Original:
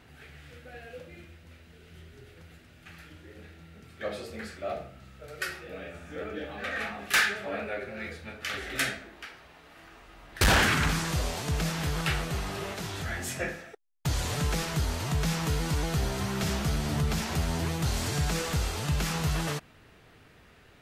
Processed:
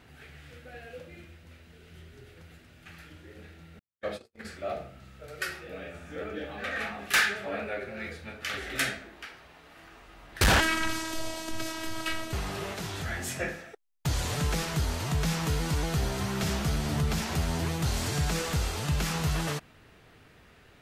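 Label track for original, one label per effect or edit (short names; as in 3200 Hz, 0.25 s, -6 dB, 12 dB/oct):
3.790000	4.450000	gate -38 dBFS, range -55 dB
10.600000	12.330000	robotiser 322 Hz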